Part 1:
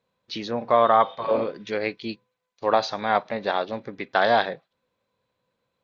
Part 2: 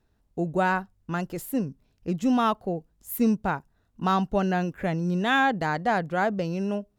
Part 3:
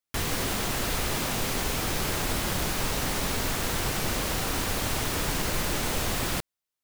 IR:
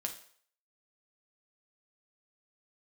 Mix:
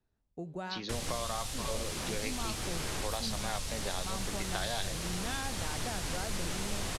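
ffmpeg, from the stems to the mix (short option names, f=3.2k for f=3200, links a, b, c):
-filter_complex "[0:a]adelay=400,volume=0dB[a];[1:a]volume=-6.5dB[b];[2:a]adelay=750,volume=-1.5dB[c];[a][b][c]amix=inputs=3:normalize=0,lowpass=f=11k:w=0.5412,lowpass=f=11k:w=1.3066,acrossover=split=120|3000[d][e][f];[e]acompressor=threshold=-32dB:ratio=6[g];[d][g][f]amix=inputs=3:normalize=0,flanger=delay=7.8:depth=6.5:regen=85:speed=1.2:shape=triangular"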